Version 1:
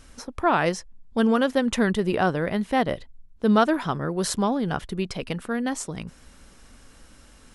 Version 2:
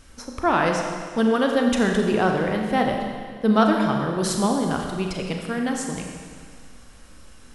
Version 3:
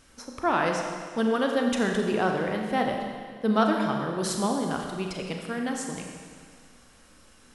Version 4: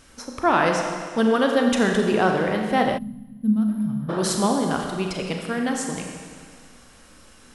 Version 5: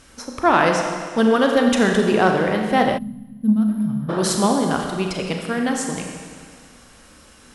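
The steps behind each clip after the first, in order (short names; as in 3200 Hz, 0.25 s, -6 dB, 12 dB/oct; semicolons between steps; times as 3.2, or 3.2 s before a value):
Schroeder reverb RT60 1.9 s, combs from 29 ms, DRR 2 dB
low shelf 91 Hz -11 dB; gain -4 dB
spectral gain 2.98–4.09, 260–9600 Hz -27 dB; gain +5.5 dB
added harmonics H 2 -13 dB, 4 -23 dB, 5 -35 dB, 7 -35 dB, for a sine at -6 dBFS; gain +3 dB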